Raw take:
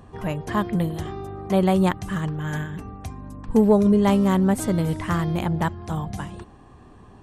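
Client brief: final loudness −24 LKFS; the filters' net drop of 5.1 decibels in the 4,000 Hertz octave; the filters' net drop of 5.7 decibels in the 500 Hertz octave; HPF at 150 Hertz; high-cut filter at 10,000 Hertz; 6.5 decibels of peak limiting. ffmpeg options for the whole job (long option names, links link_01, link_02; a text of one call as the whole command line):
ffmpeg -i in.wav -af "highpass=150,lowpass=10000,equalizer=frequency=500:width_type=o:gain=-7.5,equalizer=frequency=4000:width_type=o:gain=-7,volume=4dB,alimiter=limit=-13dB:level=0:latency=1" out.wav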